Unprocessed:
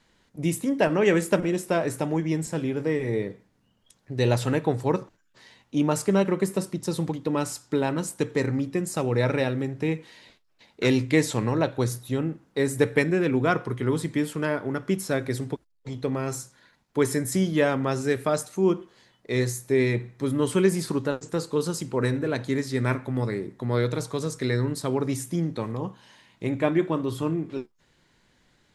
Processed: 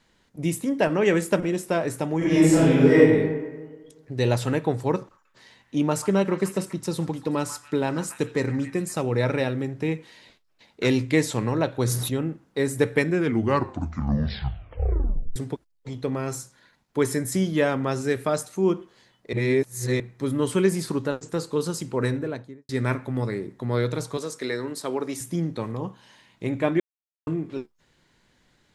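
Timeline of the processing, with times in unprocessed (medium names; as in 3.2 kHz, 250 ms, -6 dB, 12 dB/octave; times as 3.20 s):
2.17–2.97 s: reverb throw, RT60 1.4 s, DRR -11 dB
4.97–8.99 s: repeats whose band climbs or falls 140 ms, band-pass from 1.3 kHz, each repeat 0.7 oct, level -8.5 dB
11.72–12.17 s: decay stretcher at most 31 dB/s
13.10 s: tape stop 2.26 s
19.33–20.00 s: reverse
22.06–22.69 s: studio fade out
24.17–25.21 s: high-pass 300 Hz
26.80–27.27 s: mute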